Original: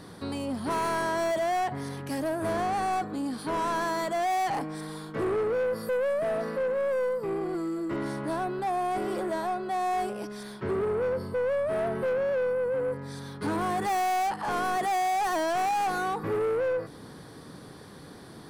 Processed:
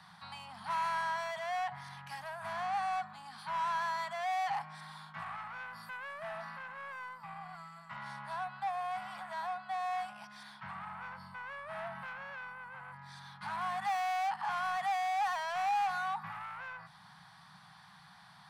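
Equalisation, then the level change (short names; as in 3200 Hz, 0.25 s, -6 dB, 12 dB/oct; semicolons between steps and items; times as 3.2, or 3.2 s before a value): elliptic band-stop 180–800 Hz, stop band 60 dB; three-band isolator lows -18 dB, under 190 Hz, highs -13 dB, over 4700 Hz; bell 240 Hz -6.5 dB 0.63 oct; -3.0 dB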